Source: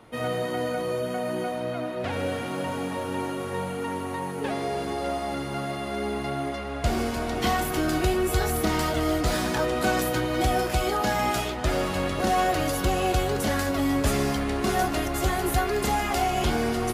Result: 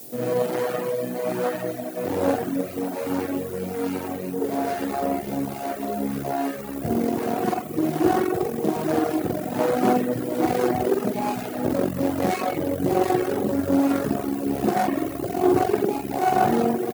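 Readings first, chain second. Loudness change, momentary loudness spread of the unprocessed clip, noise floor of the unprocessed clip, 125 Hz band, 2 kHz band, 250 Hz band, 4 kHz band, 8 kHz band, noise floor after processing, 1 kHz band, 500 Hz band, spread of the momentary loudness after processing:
+2.0 dB, 6 LU, −32 dBFS, −3.0 dB, −4.5 dB, +5.0 dB, −8.0 dB, −5.0 dB, −33 dBFS, +1.0 dB, +3.5 dB, 7 LU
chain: running median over 41 samples
in parallel at 0 dB: brickwall limiter −24.5 dBFS, peak gain reduction 10 dB
on the sum: parametric band 2,500 Hz −8.5 dB 2.5 octaves
double-tracking delay 47 ms −3 dB
rotating-speaker cabinet horn 1.2 Hz
spring reverb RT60 1.5 s, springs 44 ms, chirp 30 ms, DRR 1.5 dB
background noise violet −47 dBFS
harmonic generator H 6 −21 dB, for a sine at −6 dBFS
low-shelf EQ 240 Hz −8 dB
reverb reduction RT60 0.97 s
high-pass filter 120 Hz 24 dB per octave
level +6.5 dB

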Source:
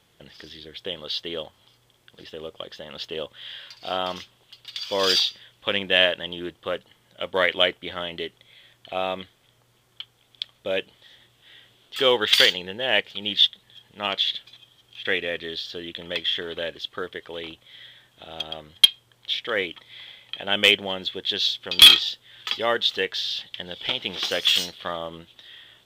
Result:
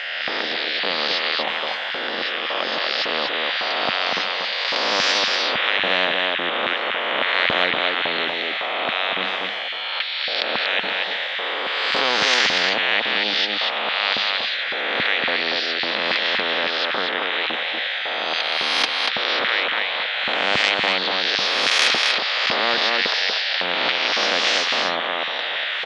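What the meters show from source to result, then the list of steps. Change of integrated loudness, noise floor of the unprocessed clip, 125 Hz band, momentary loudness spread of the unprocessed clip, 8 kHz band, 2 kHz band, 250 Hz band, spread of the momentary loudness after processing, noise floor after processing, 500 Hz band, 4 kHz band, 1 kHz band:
+2.0 dB, −63 dBFS, −0.5 dB, 19 LU, +1.5 dB, +9.0 dB, +3.0 dB, 6 LU, −26 dBFS, +2.0 dB, +1.5 dB, +10.0 dB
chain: peak hold with a rise ahead of every peak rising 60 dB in 0.99 s
mains-hum notches 50/100/150/200 Hz
reversed playback
upward compression, threshold −29 dBFS
reversed playback
auto-filter high-pass square 1.8 Hz 550–1,900 Hz
loudspeaker in its box 130–3,700 Hz, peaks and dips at 220 Hz +6 dB, 380 Hz −7 dB, 740 Hz +7 dB, 1,900 Hz +4 dB, 3,200 Hz −6 dB
on a send: single-tap delay 238 ms −8 dB
on the sum: every bin compressed towards the loudest bin 4 to 1
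level −6.5 dB

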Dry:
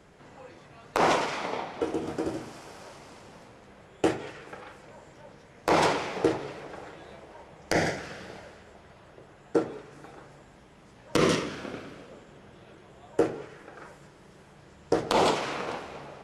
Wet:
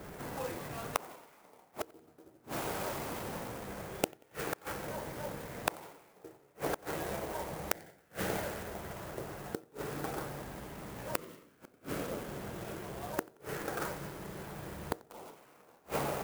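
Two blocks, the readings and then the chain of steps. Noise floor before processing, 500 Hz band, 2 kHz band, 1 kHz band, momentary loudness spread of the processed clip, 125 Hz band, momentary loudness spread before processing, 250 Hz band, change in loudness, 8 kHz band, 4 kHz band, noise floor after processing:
−54 dBFS, −9.5 dB, −7.5 dB, −9.5 dB, 15 LU, −4.0 dB, 23 LU, −9.5 dB, −11.0 dB, −3.0 dB, −10.0 dB, −64 dBFS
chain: gate with flip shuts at −29 dBFS, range −36 dB
tape delay 90 ms, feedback 42%, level −23.5 dB, low-pass 4,200 Hz
low-pass that shuts in the quiet parts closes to 2,400 Hz
converter with an unsteady clock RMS 0.054 ms
level +9 dB

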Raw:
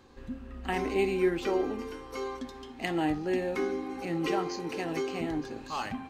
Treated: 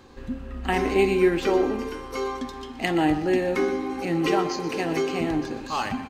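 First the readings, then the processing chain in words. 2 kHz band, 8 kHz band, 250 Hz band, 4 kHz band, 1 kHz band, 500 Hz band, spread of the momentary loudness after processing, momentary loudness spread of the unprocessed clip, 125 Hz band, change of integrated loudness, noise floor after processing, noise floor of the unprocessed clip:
+7.5 dB, +7.0 dB, +7.0 dB, +7.0 dB, +7.5 dB, +7.0 dB, 11 LU, 11 LU, +7.5 dB, +7.0 dB, −39 dBFS, −47 dBFS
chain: repeating echo 123 ms, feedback 40%, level −13.5 dB
level +7 dB

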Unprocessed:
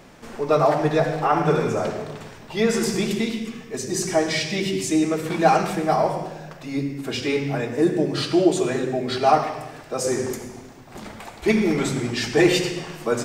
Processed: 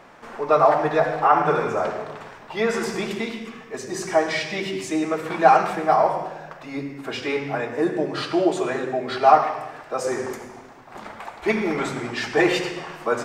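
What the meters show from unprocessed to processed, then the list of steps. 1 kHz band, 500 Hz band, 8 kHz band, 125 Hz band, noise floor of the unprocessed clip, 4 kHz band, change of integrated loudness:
+3.5 dB, −0.5 dB, −7.5 dB, −7.5 dB, −43 dBFS, −4.0 dB, 0.0 dB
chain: parametric band 1,100 Hz +14.5 dB 2.9 octaves
level −9.5 dB

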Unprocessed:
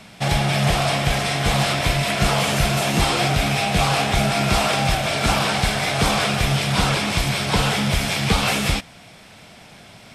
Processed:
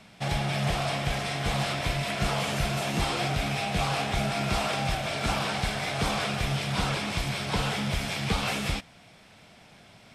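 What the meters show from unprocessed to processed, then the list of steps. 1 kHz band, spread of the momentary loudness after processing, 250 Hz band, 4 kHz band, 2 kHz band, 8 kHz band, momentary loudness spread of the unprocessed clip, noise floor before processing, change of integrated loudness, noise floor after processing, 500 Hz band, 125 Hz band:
−8.5 dB, 2 LU, −8.5 dB, −9.5 dB, −9.0 dB, −11.0 dB, 2 LU, −45 dBFS, −9.0 dB, −54 dBFS, −8.5 dB, −8.5 dB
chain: high-shelf EQ 7,800 Hz −5 dB
level −8.5 dB

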